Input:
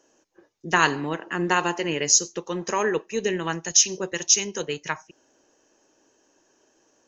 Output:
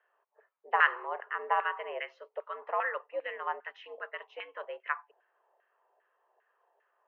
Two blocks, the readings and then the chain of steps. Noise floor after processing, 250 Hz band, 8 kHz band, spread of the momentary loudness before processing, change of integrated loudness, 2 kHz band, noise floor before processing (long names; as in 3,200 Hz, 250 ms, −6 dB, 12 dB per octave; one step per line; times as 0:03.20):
−77 dBFS, below −30 dB, can't be measured, 12 LU, −10.5 dB, −5.0 dB, −65 dBFS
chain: auto-filter band-pass saw down 2.5 Hz 640–1,600 Hz
single-sideband voice off tune +88 Hz 290–2,900 Hz